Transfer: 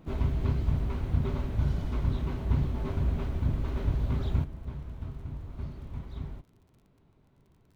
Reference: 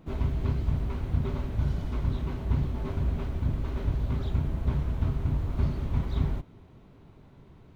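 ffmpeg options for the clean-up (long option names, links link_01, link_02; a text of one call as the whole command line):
ffmpeg -i in.wav -af "adeclick=threshold=4,asetnsamples=nb_out_samples=441:pad=0,asendcmd='4.44 volume volume 11dB',volume=0dB" out.wav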